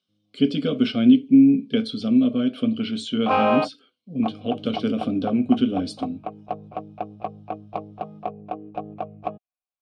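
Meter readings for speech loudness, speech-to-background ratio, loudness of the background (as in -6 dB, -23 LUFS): -21.5 LUFS, 8.5 dB, -30.0 LUFS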